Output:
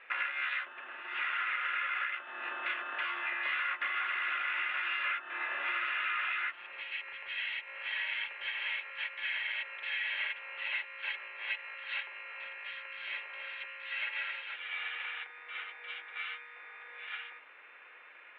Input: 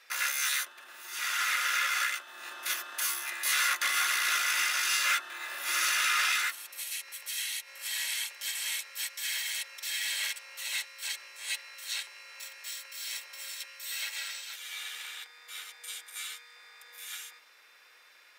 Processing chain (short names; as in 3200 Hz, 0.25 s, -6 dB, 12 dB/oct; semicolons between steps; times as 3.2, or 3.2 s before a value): steep low-pass 2900 Hz 48 dB/oct; compressor 6:1, threshold -37 dBFS, peak gain reduction 12 dB; gain +5.5 dB